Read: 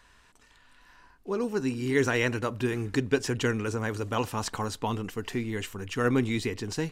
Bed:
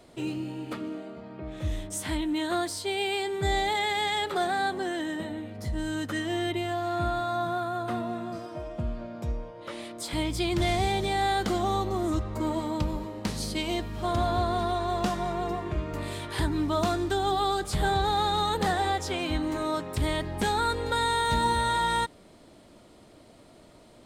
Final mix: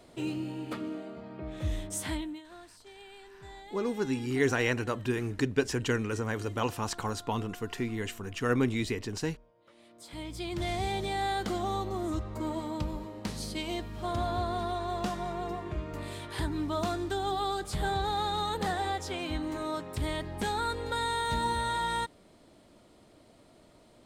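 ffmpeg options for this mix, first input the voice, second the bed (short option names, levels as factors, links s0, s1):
-filter_complex "[0:a]adelay=2450,volume=0.794[s0];[1:a]volume=5.96,afade=t=out:st=2.04:d=0.38:silence=0.0944061,afade=t=in:st=9.74:d=1.22:silence=0.141254[s1];[s0][s1]amix=inputs=2:normalize=0"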